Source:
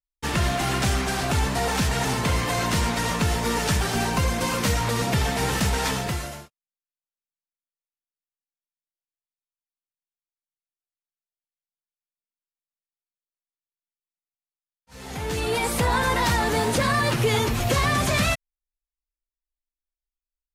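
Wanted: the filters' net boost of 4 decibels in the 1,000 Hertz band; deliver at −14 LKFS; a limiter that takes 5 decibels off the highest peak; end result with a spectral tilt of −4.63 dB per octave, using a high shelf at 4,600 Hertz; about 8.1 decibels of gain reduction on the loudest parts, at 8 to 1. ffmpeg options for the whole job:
ffmpeg -i in.wav -af "equalizer=frequency=1000:width_type=o:gain=5,highshelf=frequency=4600:gain=-5,acompressor=threshold=-25dB:ratio=8,volume=16dB,alimiter=limit=-5dB:level=0:latency=1" out.wav

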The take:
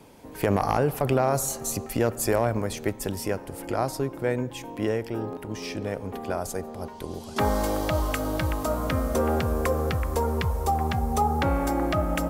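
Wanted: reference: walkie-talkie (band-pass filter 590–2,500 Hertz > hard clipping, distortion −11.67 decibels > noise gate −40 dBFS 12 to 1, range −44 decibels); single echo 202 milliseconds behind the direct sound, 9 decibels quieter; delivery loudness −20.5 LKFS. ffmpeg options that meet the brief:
ffmpeg -i in.wav -af "highpass=590,lowpass=2500,aecho=1:1:202:0.355,asoftclip=type=hard:threshold=-24.5dB,agate=range=-44dB:threshold=-40dB:ratio=12,volume=12.5dB" out.wav

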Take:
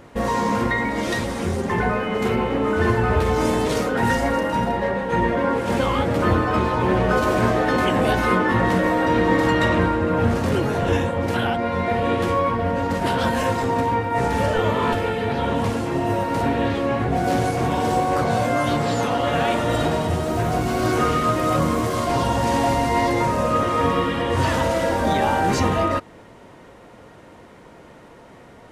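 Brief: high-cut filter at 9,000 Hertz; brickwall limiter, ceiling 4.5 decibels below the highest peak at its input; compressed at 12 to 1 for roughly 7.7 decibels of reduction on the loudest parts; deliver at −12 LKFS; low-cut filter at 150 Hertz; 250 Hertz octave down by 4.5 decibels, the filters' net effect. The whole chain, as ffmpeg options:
ffmpeg -i in.wav -af "highpass=150,lowpass=9000,equalizer=frequency=250:width_type=o:gain=-5,acompressor=threshold=-24dB:ratio=12,volume=17dB,alimiter=limit=-3dB:level=0:latency=1" out.wav

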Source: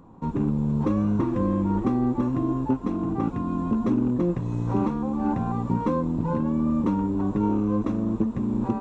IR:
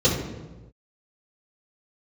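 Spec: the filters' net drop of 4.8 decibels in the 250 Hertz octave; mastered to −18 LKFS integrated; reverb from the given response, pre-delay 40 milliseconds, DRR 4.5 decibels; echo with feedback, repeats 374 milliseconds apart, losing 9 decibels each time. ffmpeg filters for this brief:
-filter_complex "[0:a]equalizer=frequency=250:width_type=o:gain=-6,aecho=1:1:374|748|1122|1496:0.355|0.124|0.0435|0.0152,asplit=2[link_01][link_02];[1:a]atrim=start_sample=2205,adelay=40[link_03];[link_02][link_03]afir=irnorm=-1:irlink=0,volume=-22dB[link_04];[link_01][link_04]amix=inputs=2:normalize=0,volume=4.5dB"

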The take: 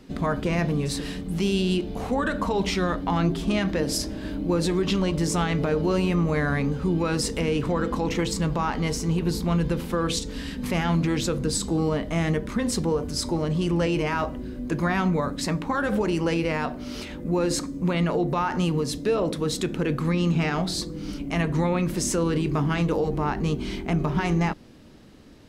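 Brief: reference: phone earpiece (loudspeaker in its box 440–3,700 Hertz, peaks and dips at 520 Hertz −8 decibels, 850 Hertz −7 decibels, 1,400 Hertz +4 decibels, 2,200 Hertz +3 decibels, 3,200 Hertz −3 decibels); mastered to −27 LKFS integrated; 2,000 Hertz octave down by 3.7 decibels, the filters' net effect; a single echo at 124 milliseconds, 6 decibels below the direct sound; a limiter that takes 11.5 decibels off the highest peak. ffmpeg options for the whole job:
ffmpeg -i in.wav -af "equalizer=frequency=2000:width_type=o:gain=-7.5,alimiter=level_in=0.5dB:limit=-24dB:level=0:latency=1,volume=-0.5dB,highpass=440,equalizer=frequency=520:width_type=q:width=4:gain=-8,equalizer=frequency=850:width_type=q:width=4:gain=-7,equalizer=frequency=1400:width_type=q:width=4:gain=4,equalizer=frequency=2200:width_type=q:width=4:gain=3,equalizer=frequency=3200:width_type=q:width=4:gain=-3,lowpass=frequency=3700:width=0.5412,lowpass=frequency=3700:width=1.3066,aecho=1:1:124:0.501,volume=12.5dB" out.wav

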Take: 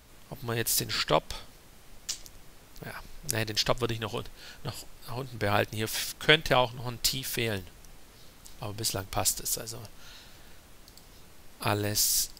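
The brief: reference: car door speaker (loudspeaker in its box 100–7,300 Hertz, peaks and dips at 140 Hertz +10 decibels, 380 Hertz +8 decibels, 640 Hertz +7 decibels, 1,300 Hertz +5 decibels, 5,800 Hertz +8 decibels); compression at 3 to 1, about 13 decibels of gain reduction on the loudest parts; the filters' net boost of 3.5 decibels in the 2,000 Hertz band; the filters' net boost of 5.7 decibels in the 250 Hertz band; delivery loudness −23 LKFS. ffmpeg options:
ffmpeg -i in.wav -af "equalizer=frequency=250:width_type=o:gain=3.5,equalizer=frequency=2000:width_type=o:gain=3,acompressor=threshold=-31dB:ratio=3,highpass=100,equalizer=frequency=140:width_type=q:width=4:gain=10,equalizer=frequency=380:width_type=q:width=4:gain=8,equalizer=frequency=640:width_type=q:width=4:gain=7,equalizer=frequency=1300:width_type=q:width=4:gain=5,equalizer=frequency=5800:width_type=q:width=4:gain=8,lowpass=frequency=7300:width=0.5412,lowpass=frequency=7300:width=1.3066,volume=9.5dB" out.wav

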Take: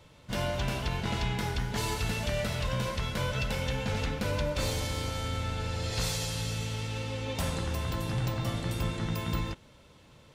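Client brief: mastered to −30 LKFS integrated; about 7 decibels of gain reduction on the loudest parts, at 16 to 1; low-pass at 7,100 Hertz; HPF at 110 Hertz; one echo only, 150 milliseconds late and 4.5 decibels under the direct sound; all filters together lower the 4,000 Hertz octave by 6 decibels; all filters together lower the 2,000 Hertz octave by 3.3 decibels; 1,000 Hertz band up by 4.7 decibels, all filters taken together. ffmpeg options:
ffmpeg -i in.wav -af "highpass=110,lowpass=7100,equalizer=frequency=1000:width_type=o:gain=7,equalizer=frequency=2000:width_type=o:gain=-5,equalizer=frequency=4000:width_type=o:gain=-6,acompressor=threshold=-34dB:ratio=16,aecho=1:1:150:0.596,volume=7.5dB" out.wav

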